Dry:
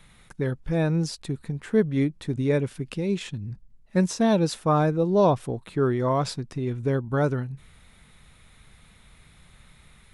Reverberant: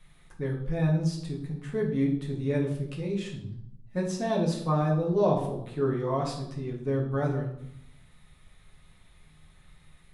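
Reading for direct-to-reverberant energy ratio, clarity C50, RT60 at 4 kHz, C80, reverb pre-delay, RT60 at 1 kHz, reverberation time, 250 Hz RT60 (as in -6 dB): -3.0 dB, 6.0 dB, 0.55 s, 10.0 dB, 4 ms, 0.70 s, 0.75 s, 1.0 s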